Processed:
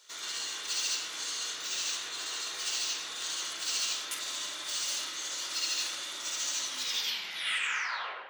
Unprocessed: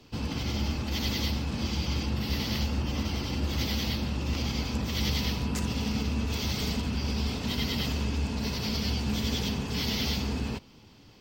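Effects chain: tape stop on the ending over 2.29 s; high-pass 1.3 kHz 12 dB/octave; reverberation RT60 1.7 s, pre-delay 3 ms, DRR -1 dB; speed mistake 33 rpm record played at 45 rpm; in parallel at -8.5 dB: overload inside the chain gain 29.5 dB; on the sum: trim -1.5 dB

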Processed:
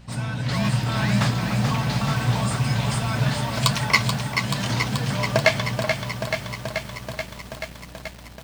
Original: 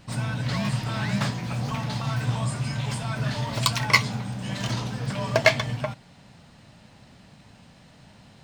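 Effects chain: hum 60 Hz, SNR 22 dB; level rider gain up to 4 dB; bit-crushed delay 432 ms, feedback 80%, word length 7-bit, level -6 dB

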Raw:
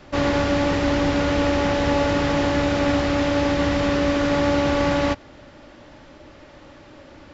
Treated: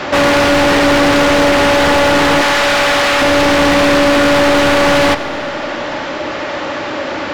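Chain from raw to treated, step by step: 2.41–3.22 s: high-pass 1.2 kHz 6 dB/octave; overdrive pedal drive 33 dB, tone 3 kHz, clips at -7.5 dBFS; Schroeder reverb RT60 2.5 s, DRR 17 dB; trim +3.5 dB

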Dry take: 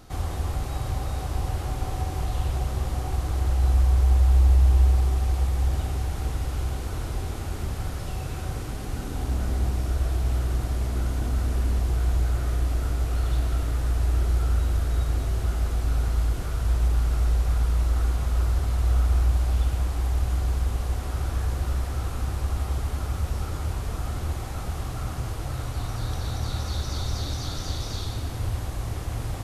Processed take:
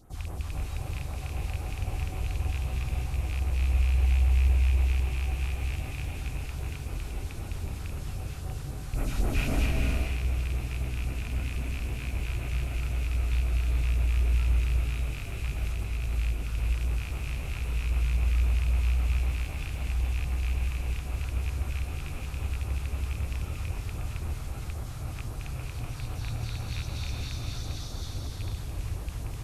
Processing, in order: rattle on loud lows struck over -23 dBFS, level -21 dBFS; 8.91–9.59 s: reverb throw, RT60 0.91 s, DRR -9.5 dB; 15.65–16.13 s: compressor with a negative ratio -25 dBFS; phase shifter stages 2, 3.8 Hz, lowest notch 320–4700 Hz; gated-style reverb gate 490 ms rising, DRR 1 dB; trim -7.5 dB

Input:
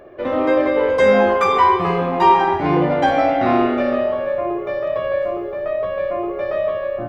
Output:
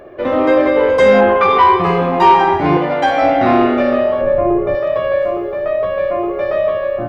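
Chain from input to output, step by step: 1.20–1.82 s: low-pass 2.9 kHz -> 5.4 kHz 24 dB/octave; 2.77–3.22 s: bass shelf 410 Hz -10 dB; saturation -5.5 dBFS, distortion -23 dB; 4.21–4.75 s: tilt EQ -3 dB/octave; trim +5 dB

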